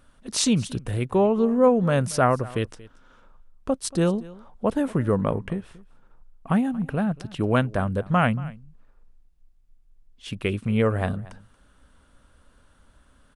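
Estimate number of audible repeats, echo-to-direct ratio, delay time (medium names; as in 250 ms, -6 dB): 1, -20.5 dB, 231 ms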